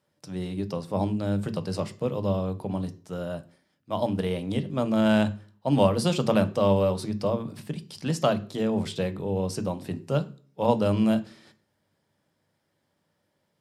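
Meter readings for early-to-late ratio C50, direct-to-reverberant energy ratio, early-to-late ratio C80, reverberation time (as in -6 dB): 17.0 dB, 10.0 dB, 21.5 dB, 0.45 s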